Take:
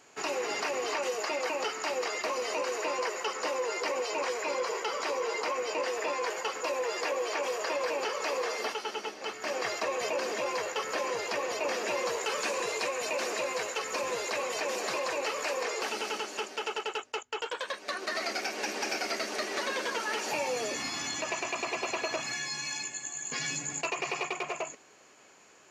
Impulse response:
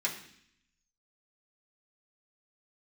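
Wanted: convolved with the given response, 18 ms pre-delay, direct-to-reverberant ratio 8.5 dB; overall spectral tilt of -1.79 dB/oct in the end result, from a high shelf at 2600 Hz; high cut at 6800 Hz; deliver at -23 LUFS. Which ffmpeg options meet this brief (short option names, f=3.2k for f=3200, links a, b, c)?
-filter_complex "[0:a]lowpass=6.8k,highshelf=f=2.6k:g=-4,asplit=2[a][b];[1:a]atrim=start_sample=2205,adelay=18[c];[b][c]afir=irnorm=-1:irlink=0,volume=-14dB[d];[a][d]amix=inputs=2:normalize=0,volume=10dB"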